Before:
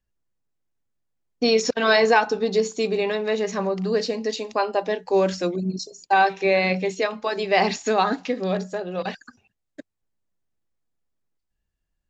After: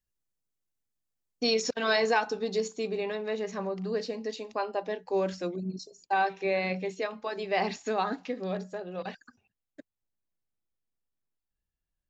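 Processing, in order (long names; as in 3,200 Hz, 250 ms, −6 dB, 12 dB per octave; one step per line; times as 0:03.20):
high-shelf EQ 4,300 Hz +10.5 dB, from 0:01.54 +4 dB, from 0:02.68 −5 dB
level −8.5 dB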